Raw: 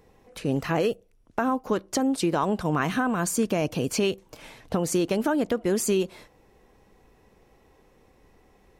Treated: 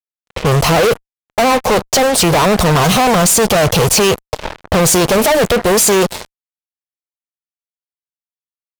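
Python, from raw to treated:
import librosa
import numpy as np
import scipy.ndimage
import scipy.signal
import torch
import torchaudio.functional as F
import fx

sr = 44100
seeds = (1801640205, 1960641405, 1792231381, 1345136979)

y = fx.env_lowpass(x, sr, base_hz=900.0, full_db=-25.0)
y = fx.fixed_phaser(y, sr, hz=690.0, stages=4)
y = fx.fuzz(y, sr, gain_db=46.0, gate_db=-48.0)
y = y * 10.0 ** (3.5 / 20.0)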